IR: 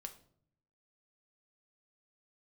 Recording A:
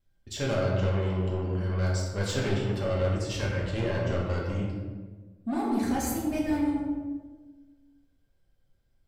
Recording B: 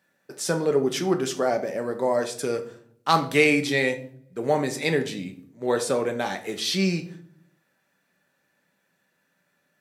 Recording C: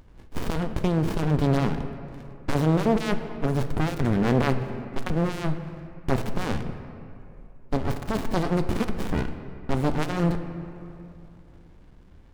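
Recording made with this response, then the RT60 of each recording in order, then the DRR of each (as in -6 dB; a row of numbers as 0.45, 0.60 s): B; 1.4, 0.60, 2.8 s; -4.5, 5.5, 8.0 dB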